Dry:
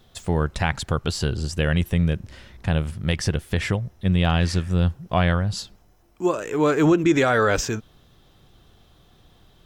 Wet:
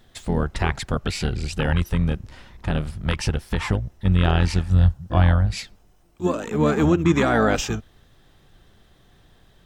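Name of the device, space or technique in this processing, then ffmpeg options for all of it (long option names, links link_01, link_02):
octave pedal: -filter_complex "[0:a]asplit=2[link_01][link_02];[link_02]asetrate=22050,aresample=44100,atempo=2,volume=-2dB[link_03];[link_01][link_03]amix=inputs=2:normalize=0,asettb=1/sr,asplit=3[link_04][link_05][link_06];[link_04]atrim=end=4.704[link_07];[link_05]atrim=start=4.7:end=5.46,asetpts=PTS-STARTPTS,afade=type=in:duration=0.004:curve=qsin,afade=type=out:start_time=0.756:duration=0.004:curve=qsin,equalizer=frequency=100:width_type=o:width=0.67:gain=6,equalizer=frequency=400:width_type=o:width=0.67:gain=-9,equalizer=frequency=2500:width_type=o:width=0.67:gain=-5[link_08];[link_06]atrim=start=5.456[link_09];[link_07][link_08]acrossfade=duration=0.004:curve1=hsin:curve2=qsin[link_10];[link_10][link_09]acrossfade=duration=0.004:curve1=qsin:curve2=hsin,volume=-2dB"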